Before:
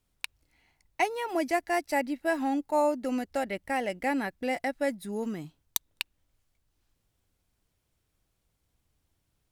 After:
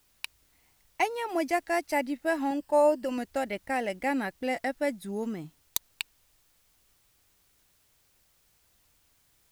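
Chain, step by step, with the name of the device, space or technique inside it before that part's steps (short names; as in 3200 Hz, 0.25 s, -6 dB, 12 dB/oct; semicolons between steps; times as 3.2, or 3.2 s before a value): plain cassette with noise reduction switched in (mismatched tape noise reduction decoder only; wow and flutter; white noise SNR 35 dB); 2.5–3.18 ripple EQ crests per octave 1.3, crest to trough 9 dB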